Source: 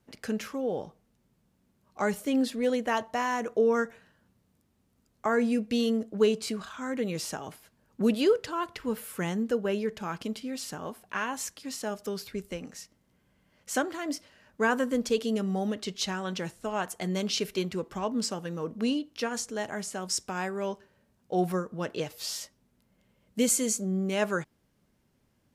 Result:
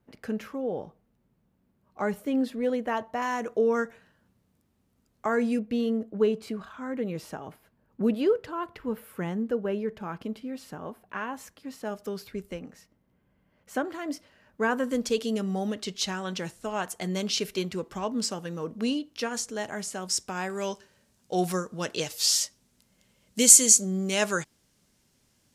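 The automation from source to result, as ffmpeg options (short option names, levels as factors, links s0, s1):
-af "asetnsamples=n=441:p=0,asendcmd='3.22 equalizer g -1.5;5.59 equalizer g -13.5;11.85 equalizer g -5.5;12.59 equalizer g -13.5;13.85 equalizer g -5.5;14.84 equalizer g 2.5;20.5 equalizer g 13.5',equalizer=f=6900:t=o:w=2.4:g=-10.5"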